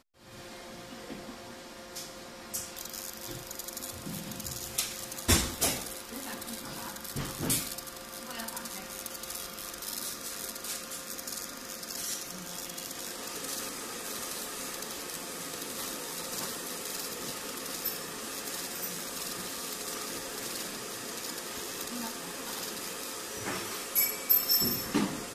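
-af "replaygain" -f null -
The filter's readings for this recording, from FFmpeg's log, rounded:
track_gain = +18.9 dB
track_peak = 0.217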